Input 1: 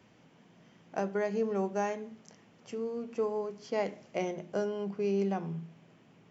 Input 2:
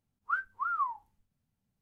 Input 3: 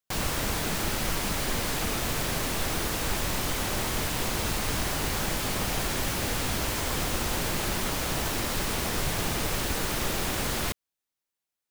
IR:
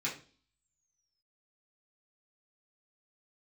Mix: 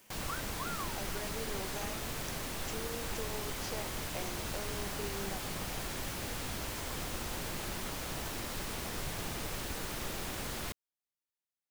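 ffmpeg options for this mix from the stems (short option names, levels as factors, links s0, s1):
-filter_complex "[0:a]aemphasis=mode=production:type=riaa,volume=0.841[s0];[1:a]aexciter=amount=11.1:drive=8.6:freq=5200,volume=1.19[s1];[2:a]volume=0.316[s2];[s0][s1]amix=inputs=2:normalize=0,acompressor=threshold=0.00891:ratio=6,volume=1[s3];[s2][s3]amix=inputs=2:normalize=0"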